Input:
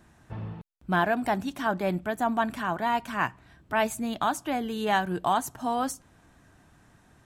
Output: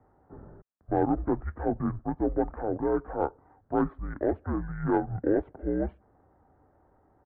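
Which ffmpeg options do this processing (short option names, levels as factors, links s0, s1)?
-af "highpass=f=250:t=q:w=0.5412,highpass=f=250:t=q:w=1.307,lowpass=f=3200:t=q:w=0.5176,lowpass=f=3200:t=q:w=0.7071,lowpass=f=3200:t=q:w=1.932,afreqshift=-140,aeval=exprs='0.299*(cos(1*acos(clip(val(0)/0.299,-1,1)))-cos(1*PI/2))+0.00473*(cos(6*acos(clip(val(0)/0.299,-1,1)))-cos(6*PI/2))':c=same,asetrate=23361,aresample=44100,atempo=1.88775"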